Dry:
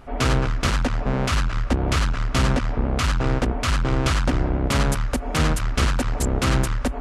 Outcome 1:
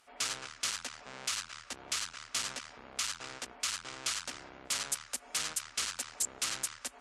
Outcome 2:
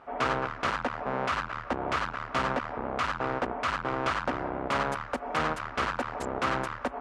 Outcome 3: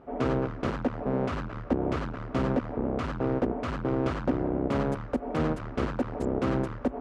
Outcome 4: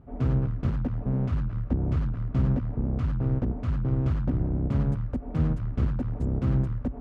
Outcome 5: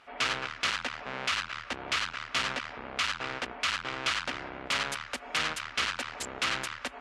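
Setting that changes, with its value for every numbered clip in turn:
band-pass filter, frequency: 8 kHz, 1 kHz, 390 Hz, 130 Hz, 2.8 kHz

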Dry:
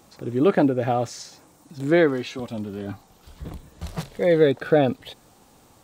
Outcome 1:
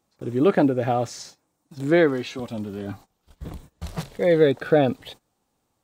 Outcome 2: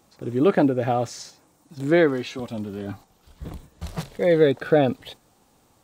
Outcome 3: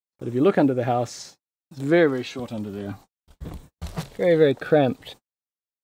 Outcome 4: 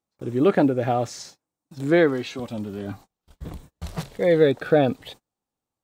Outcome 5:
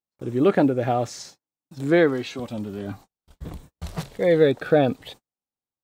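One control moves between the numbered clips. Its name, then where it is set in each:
gate, range: -19 dB, -6 dB, -59 dB, -33 dB, -45 dB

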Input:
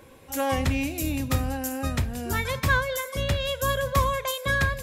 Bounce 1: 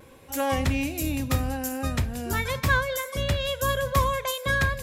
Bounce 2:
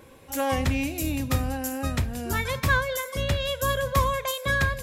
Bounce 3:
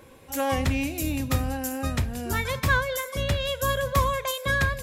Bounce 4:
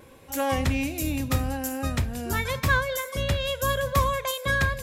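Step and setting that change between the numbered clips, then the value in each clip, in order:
vibrato, rate: 0.41 Hz, 1.2 Hz, 6.4 Hz, 0.8 Hz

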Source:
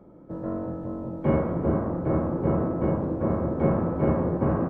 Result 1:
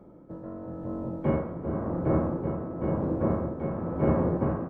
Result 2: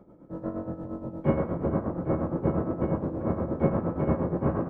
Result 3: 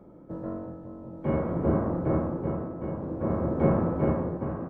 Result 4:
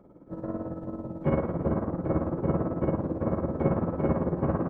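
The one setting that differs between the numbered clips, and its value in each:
tremolo, rate: 0.95 Hz, 8.5 Hz, 0.54 Hz, 18 Hz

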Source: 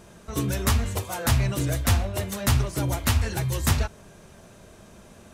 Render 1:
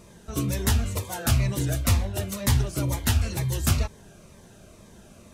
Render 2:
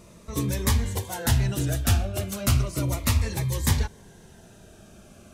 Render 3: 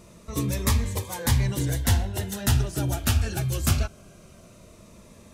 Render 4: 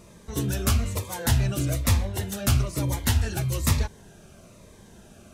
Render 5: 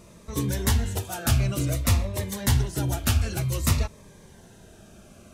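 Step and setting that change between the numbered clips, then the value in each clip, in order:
Shepard-style phaser, rate: 2.1 Hz, 0.34 Hz, 0.21 Hz, 1.1 Hz, 0.54 Hz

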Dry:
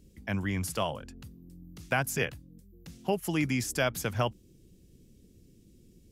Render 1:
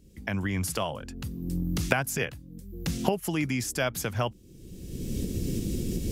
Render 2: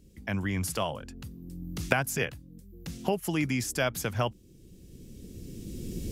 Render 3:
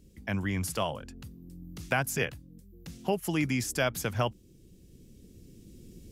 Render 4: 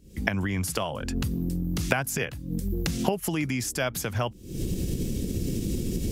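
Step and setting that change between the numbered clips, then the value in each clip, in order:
recorder AGC, rising by: 31 dB/s, 13 dB/s, 5 dB/s, 89 dB/s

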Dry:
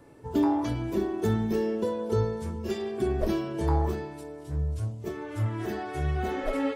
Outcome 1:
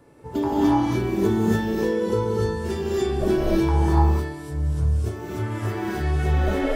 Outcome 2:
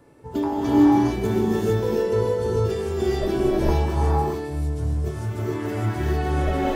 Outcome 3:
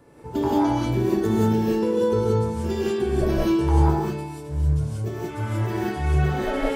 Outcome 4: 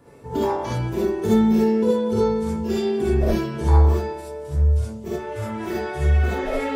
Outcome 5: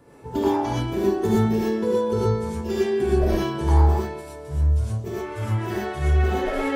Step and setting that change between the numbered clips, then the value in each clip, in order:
gated-style reverb, gate: 320 ms, 480 ms, 210 ms, 90 ms, 140 ms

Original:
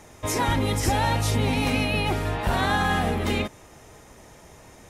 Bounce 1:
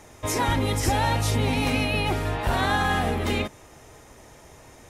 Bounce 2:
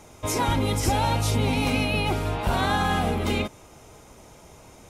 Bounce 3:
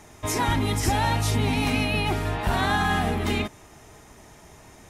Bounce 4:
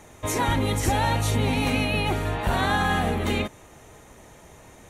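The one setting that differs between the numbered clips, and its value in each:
band-stop, frequency: 190 Hz, 1.8 kHz, 520 Hz, 5.1 kHz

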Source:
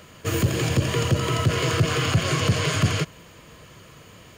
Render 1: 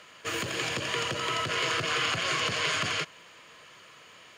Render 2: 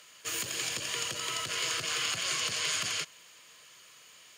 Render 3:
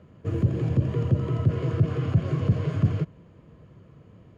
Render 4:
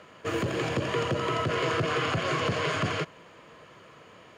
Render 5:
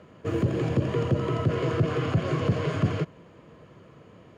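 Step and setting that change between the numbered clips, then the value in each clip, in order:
band-pass filter, frequency: 2.3 kHz, 6.9 kHz, 130 Hz, 860 Hz, 320 Hz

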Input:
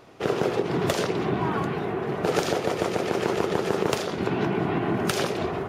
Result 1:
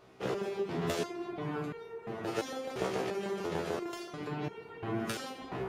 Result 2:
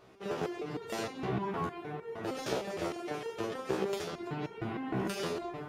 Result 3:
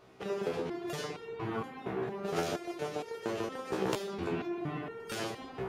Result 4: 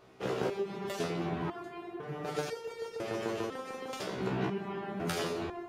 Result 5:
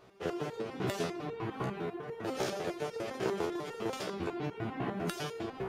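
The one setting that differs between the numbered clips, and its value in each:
resonator arpeggio, rate: 2.9 Hz, 6.5 Hz, 4.3 Hz, 2 Hz, 10 Hz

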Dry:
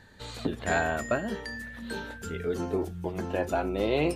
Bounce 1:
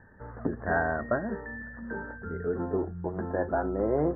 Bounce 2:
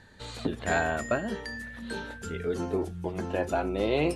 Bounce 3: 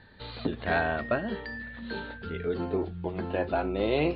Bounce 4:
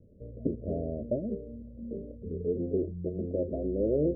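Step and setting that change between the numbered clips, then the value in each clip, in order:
steep low-pass, frequency: 1.8 kHz, 12 kHz, 4.5 kHz, 610 Hz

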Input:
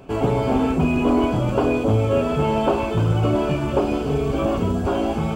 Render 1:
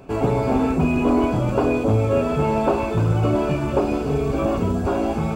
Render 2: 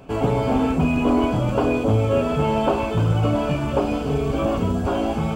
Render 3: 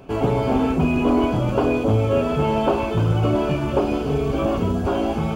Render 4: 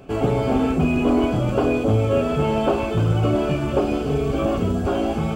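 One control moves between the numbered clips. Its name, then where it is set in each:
band-stop, frequency: 3.1 kHz, 370 Hz, 7.9 kHz, 950 Hz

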